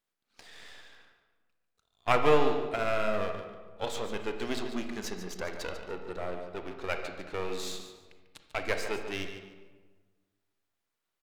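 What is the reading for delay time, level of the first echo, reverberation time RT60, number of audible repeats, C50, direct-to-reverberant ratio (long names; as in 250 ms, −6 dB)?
145 ms, −10.5 dB, 1.4 s, 2, 5.5 dB, 5.0 dB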